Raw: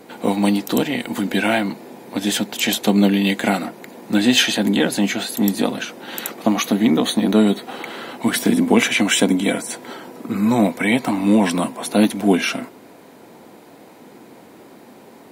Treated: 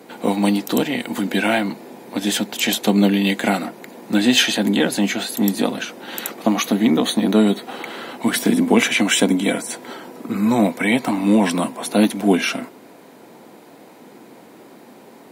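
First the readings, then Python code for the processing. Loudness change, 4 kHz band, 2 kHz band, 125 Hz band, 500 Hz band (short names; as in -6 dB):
0.0 dB, 0.0 dB, 0.0 dB, -0.5 dB, 0.0 dB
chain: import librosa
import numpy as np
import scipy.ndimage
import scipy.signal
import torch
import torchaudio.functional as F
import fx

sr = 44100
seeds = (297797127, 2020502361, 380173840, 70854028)

y = scipy.signal.sosfilt(scipy.signal.butter(2, 120.0, 'highpass', fs=sr, output='sos'), x)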